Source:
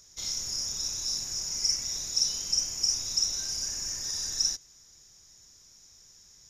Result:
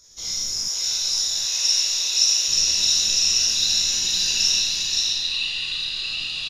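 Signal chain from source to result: bin magnitudes rounded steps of 15 dB; bell 3800 Hz +4.5 dB 0.83 oct; echo 0.524 s -3.5 dB; Schroeder reverb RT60 1.1 s, combs from 32 ms, DRR -2.5 dB; chorus 1.2 Hz, delay 16 ms, depth 5.2 ms; 0.68–2.48 steep high-pass 420 Hz 36 dB/oct; echoes that change speed 0.492 s, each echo -6 st, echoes 2, each echo -6 dB; gain +5 dB

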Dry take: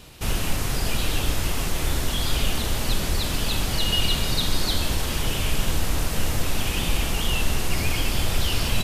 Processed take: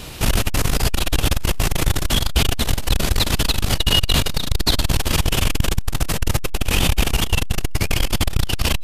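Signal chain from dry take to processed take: in parallel at -2.5 dB: limiter -19 dBFS, peak gain reduction 10 dB; on the sum: core saturation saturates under 130 Hz; gain +7 dB

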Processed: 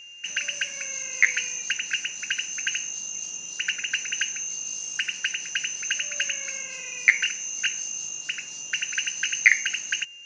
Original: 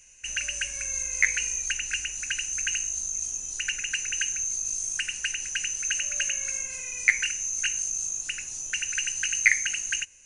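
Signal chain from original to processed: Chebyshev band-pass 160–5300 Hz, order 3; whine 2800 Hz -46 dBFS; gain +4 dB

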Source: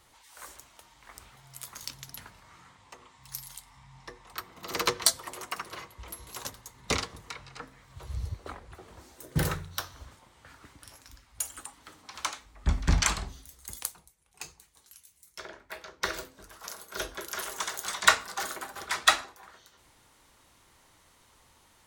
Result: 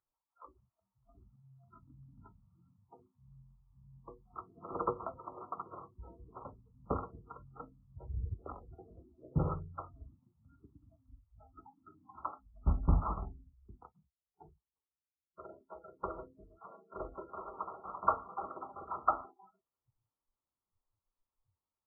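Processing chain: brick-wall FIR low-pass 1400 Hz; spectral noise reduction 30 dB; gain -3.5 dB

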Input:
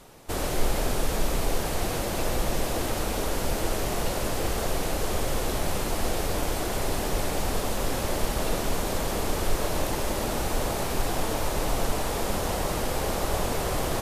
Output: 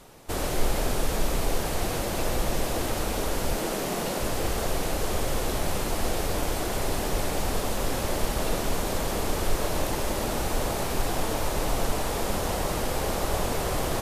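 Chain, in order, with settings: 3.58–4.2 resonant low shelf 120 Hz -11.5 dB, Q 1.5

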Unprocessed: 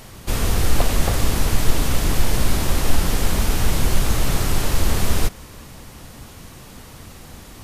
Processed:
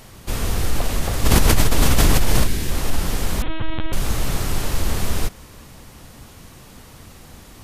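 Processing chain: 2.47–2.71 spectral gain 510–1500 Hz -8 dB; 3.42–3.93 LPC vocoder at 8 kHz pitch kept; maximiser +5 dB; 1.24–2.47 fast leveller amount 100%; gain -7.5 dB

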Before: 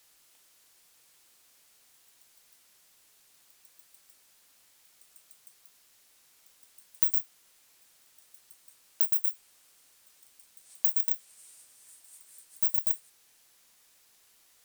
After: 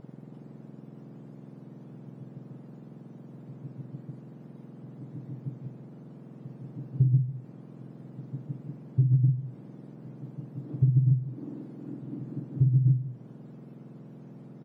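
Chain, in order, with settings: spectrum mirrored in octaves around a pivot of 1600 Hz; compressor 5:1, threshold -27 dBFS, peak gain reduction 17 dB; de-hum 121.6 Hz, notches 6; on a send: feedback echo 0.148 s, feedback 20%, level -13.5 dB; on the sum: gain +6 dB

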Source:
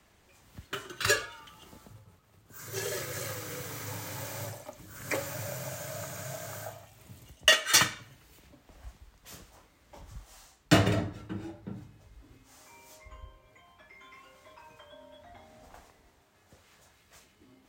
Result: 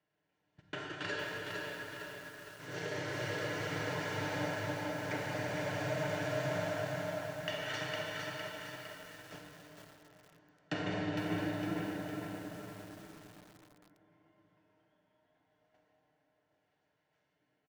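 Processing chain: per-bin compression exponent 0.6; HPF 150 Hz 6 dB/oct; notch 1200 Hz, Q 7.3; gate -34 dBFS, range -29 dB; low shelf 470 Hz -5 dB; comb 6.6 ms, depth 45%; compressor 6:1, threshold -25 dBFS, peak gain reduction 10.5 dB; tape spacing loss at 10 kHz 30 dB; echo 0.194 s -21 dB; reverb RT60 5.1 s, pre-delay 33 ms, DRR -1.5 dB; lo-fi delay 0.458 s, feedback 55%, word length 8-bit, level -3.5 dB; gain -5.5 dB

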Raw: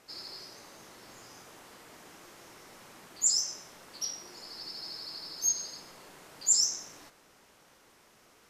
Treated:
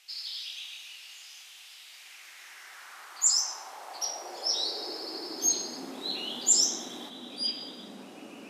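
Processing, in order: small resonant body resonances 360/750 Hz, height 10 dB, ringing for 20 ms; echoes that change speed 0.14 s, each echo -5 st, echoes 2, each echo -6 dB; high-pass sweep 2900 Hz -> 230 Hz, 1.83–5.79; gain +2 dB

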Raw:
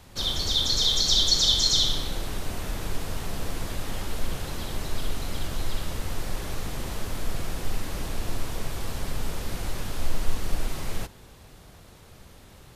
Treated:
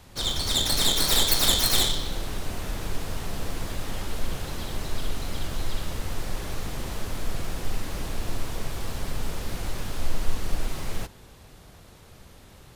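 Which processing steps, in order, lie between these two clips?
tracing distortion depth 0.14 ms

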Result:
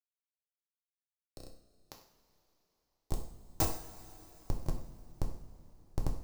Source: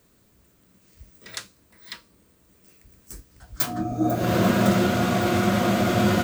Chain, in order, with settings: compressor 2:1, threshold -46 dBFS, peak gain reduction 17 dB; high shelf 7900 Hz +11.5 dB; notch 750 Hz, Q 12; Schmitt trigger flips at -24.5 dBFS; flutter echo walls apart 5.5 m, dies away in 0.31 s; level quantiser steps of 20 dB; band shelf 2200 Hz -10.5 dB; two-slope reverb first 0.51 s, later 4 s, from -18 dB, DRR 1.5 dB; gain +13.5 dB

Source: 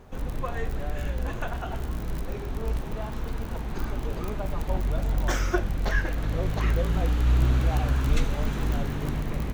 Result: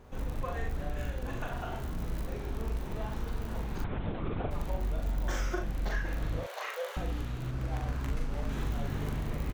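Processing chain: 6.39–6.97 steep high-pass 480 Hz 48 dB/oct; compressor, threshold -25 dBFS, peak gain reduction 8.5 dB; on a send: early reflections 41 ms -3.5 dB, 71 ms -9.5 dB; 3.84–4.51 on the sum: LPC vocoder at 8 kHz whisper; 7.51–8.49 running maximum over 9 samples; gain -5 dB

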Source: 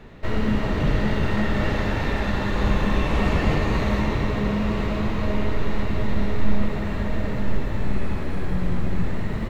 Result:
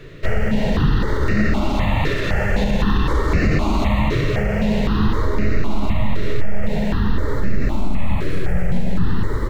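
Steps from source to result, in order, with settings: maximiser +14 dB; step phaser 3.9 Hz 220–3300 Hz; gain -5.5 dB

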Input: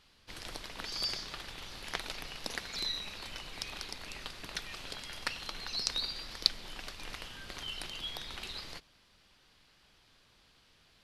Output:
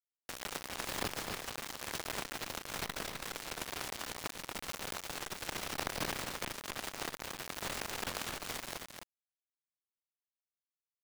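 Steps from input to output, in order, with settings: spectral limiter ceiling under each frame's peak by 30 dB; LPF 1200 Hz 6 dB/oct; in parallel at +0.5 dB: compressor 10:1, threshold -56 dBFS, peak gain reduction 27 dB; on the sum: bit-crush 7-bit; on a send: echo 0.257 s -7.5 dB; on the sum: core saturation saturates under 3000 Hz; gain +8 dB

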